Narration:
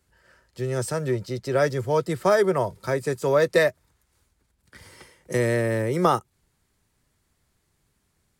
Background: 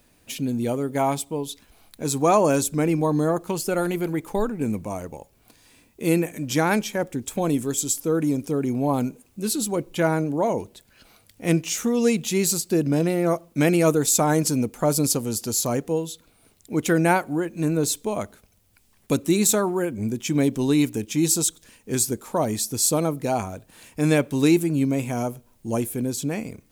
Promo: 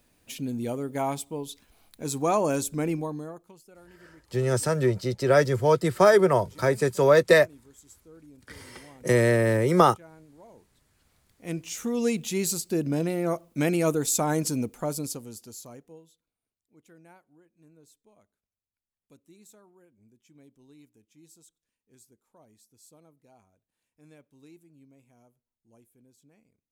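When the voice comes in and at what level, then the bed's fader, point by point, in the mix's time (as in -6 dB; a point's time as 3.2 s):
3.75 s, +2.0 dB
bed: 2.92 s -6 dB
3.65 s -29 dB
10.49 s -29 dB
11.95 s -5.5 dB
14.64 s -5.5 dB
16.64 s -35 dB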